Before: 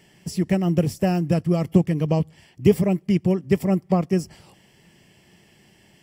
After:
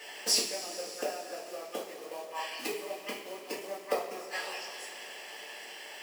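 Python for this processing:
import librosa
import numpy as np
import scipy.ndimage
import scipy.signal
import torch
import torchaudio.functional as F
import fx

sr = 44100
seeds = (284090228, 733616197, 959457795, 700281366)

p1 = fx.rider(x, sr, range_db=4, speed_s=2.0)
p2 = x + F.gain(torch.from_numpy(p1), -1.5).numpy()
p3 = fx.high_shelf(p2, sr, hz=8000.0, db=-8.5)
p4 = p3 + fx.echo_stepped(p3, sr, ms=201, hz=1400.0, octaves=1.4, feedback_pct=70, wet_db=-7, dry=0)
p5 = fx.gate_flip(p4, sr, shuts_db=-12.0, range_db=-25)
p6 = fx.quant_companded(p5, sr, bits=6)
p7 = scipy.signal.sosfilt(scipy.signal.butter(4, 490.0, 'highpass', fs=sr, output='sos'), p6)
p8 = fx.rev_double_slope(p7, sr, seeds[0], early_s=0.37, late_s=3.6, knee_db=-16, drr_db=-6.5)
y = F.gain(torch.from_numpy(p8), 1.5).numpy()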